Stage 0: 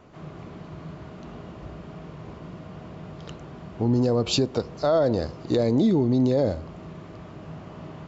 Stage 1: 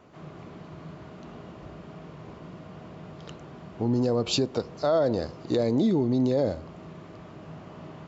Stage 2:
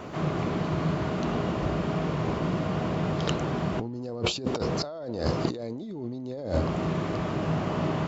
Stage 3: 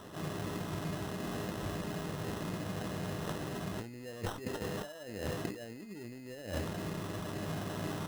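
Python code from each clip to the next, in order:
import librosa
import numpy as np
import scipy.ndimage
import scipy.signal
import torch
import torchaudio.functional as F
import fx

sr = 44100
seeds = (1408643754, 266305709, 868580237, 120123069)

y1 = fx.low_shelf(x, sr, hz=69.0, db=-10.5)
y1 = F.gain(torch.from_numpy(y1), -2.0).numpy()
y2 = fx.over_compress(y1, sr, threshold_db=-37.0, ratio=-1.0)
y2 = F.gain(torch.from_numpy(y2), 8.0).numpy()
y3 = fx.sample_hold(y2, sr, seeds[0], rate_hz=2300.0, jitter_pct=0)
y3 = fx.comb_fb(y3, sr, f0_hz=100.0, decay_s=0.15, harmonics='all', damping=0.0, mix_pct=70)
y3 = F.gain(torch.from_numpy(y3), -5.5).numpy()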